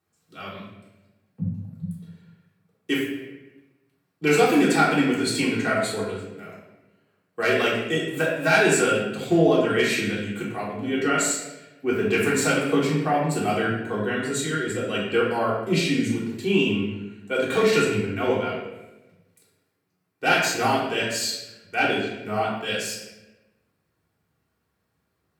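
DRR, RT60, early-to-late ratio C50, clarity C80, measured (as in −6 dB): −7.0 dB, 1.0 s, 1.5 dB, 4.5 dB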